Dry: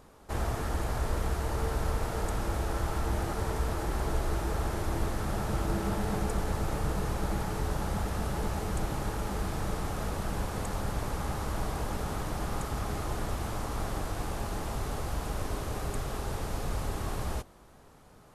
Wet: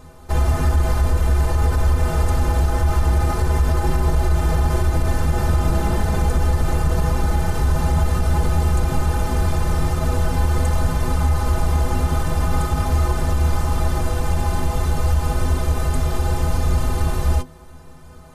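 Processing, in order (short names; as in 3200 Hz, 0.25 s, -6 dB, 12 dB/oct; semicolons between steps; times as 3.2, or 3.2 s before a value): low shelf 120 Hz +10.5 dB; metallic resonator 75 Hz, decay 0.26 s, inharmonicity 0.03; maximiser +25 dB; gain -8 dB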